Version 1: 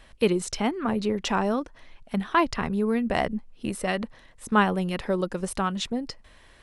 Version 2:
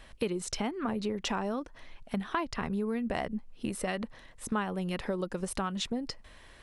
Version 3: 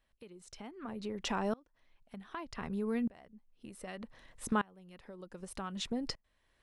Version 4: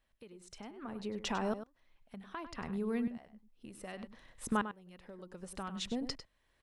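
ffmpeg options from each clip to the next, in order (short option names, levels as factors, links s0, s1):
-af "acompressor=threshold=0.0316:ratio=4"
-af "aeval=exprs='val(0)*pow(10,-27*if(lt(mod(-0.65*n/s,1),2*abs(-0.65)/1000),1-mod(-0.65*n/s,1)/(2*abs(-0.65)/1000),(mod(-0.65*n/s,1)-2*abs(-0.65)/1000)/(1-2*abs(-0.65)/1000))/20)':c=same,volume=1.12"
-filter_complex "[0:a]asplit=2[s0][s1];[s1]adelay=99.13,volume=0.282,highshelf=f=4000:g=-2.23[s2];[s0][s2]amix=inputs=2:normalize=0,volume=0.891"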